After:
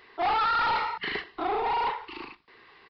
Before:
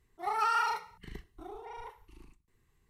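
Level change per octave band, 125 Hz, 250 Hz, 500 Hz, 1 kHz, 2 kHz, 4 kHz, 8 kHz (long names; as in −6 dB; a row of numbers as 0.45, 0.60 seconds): +4.5 dB, +12.0 dB, +12.0 dB, +7.5 dB, +8.5 dB, +11.0 dB, below −10 dB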